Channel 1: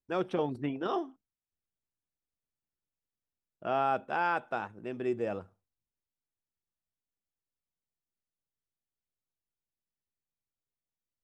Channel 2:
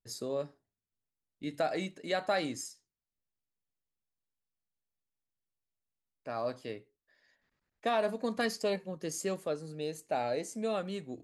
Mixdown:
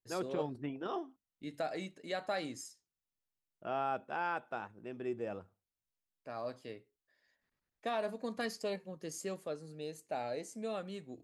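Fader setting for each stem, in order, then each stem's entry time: -6.5 dB, -6.0 dB; 0.00 s, 0.00 s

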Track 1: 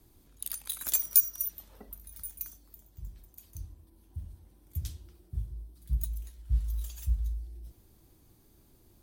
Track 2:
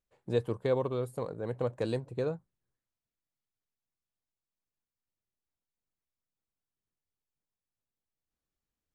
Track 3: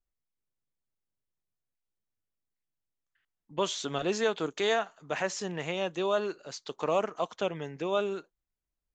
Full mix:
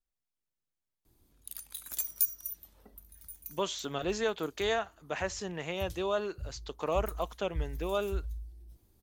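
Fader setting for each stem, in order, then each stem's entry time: -6.5 dB, mute, -3.0 dB; 1.05 s, mute, 0.00 s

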